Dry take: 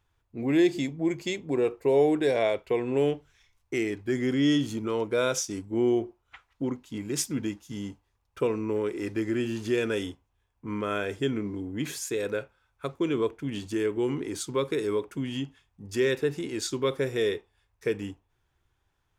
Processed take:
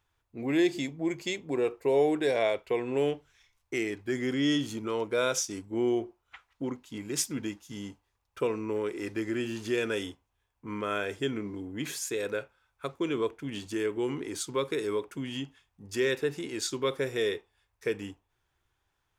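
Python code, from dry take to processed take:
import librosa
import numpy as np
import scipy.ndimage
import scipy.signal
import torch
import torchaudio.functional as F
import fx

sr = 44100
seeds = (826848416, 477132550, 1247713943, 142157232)

y = fx.low_shelf(x, sr, hz=390.0, db=-6.0)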